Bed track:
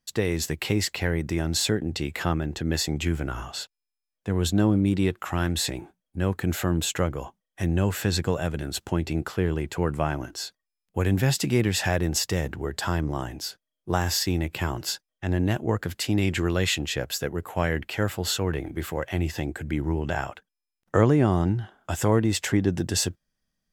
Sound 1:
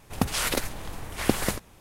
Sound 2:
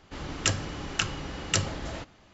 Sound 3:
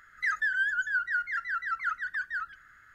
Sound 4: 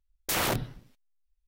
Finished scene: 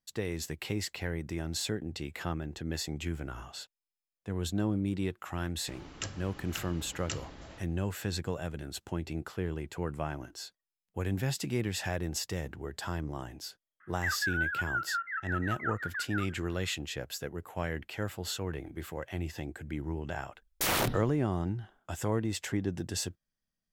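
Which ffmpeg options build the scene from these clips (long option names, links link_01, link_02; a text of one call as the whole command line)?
ffmpeg -i bed.wav -i cue0.wav -i cue1.wav -i cue2.wav -i cue3.wav -filter_complex "[0:a]volume=-9.5dB[link_01];[3:a]highpass=frequency=250:width_type=q:width=0.5412,highpass=frequency=250:width_type=q:width=1.307,lowpass=frequency=2800:width_type=q:width=0.5176,lowpass=frequency=2800:width_type=q:width=0.7071,lowpass=frequency=2800:width_type=q:width=1.932,afreqshift=-61[link_02];[2:a]atrim=end=2.33,asetpts=PTS-STARTPTS,volume=-12.5dB,afade=type=in:duration=0.004:curve=hsin,afade=type=out:start_time=2.326:duration=0.004:curve=hsin,adelay=5560[link_03];[link_02]atrim=end=2.94,asetpts=PTS-STARTPTS,volume=-4dB,afade=type=in:duration=0.004:curve=hsin,afade=type=out:start_time=2.936:duration=0.004:curve=hsin,adelay=608580S[link_04];[4:a]atrim=end=1.47,asetpts=PTS-STARTPTS,volume=-1dB,afade=type=in:duration=0.004:curve=hsin,afade=type=out:start_time=1.466:duration=0.004:curve=hsin,adelay=20320[link_05];[link_01][link_03][link_04][link_05]amix=inputs=4:normalize=0" out.wav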